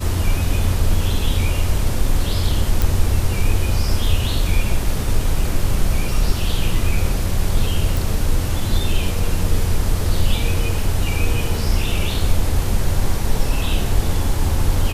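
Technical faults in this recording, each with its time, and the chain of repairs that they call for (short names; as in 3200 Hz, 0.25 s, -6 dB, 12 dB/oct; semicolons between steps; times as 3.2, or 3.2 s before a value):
2.82 pop
7.97 pop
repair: de-click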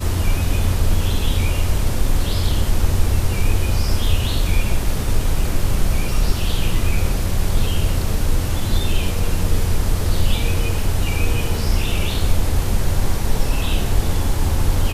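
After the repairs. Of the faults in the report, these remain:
none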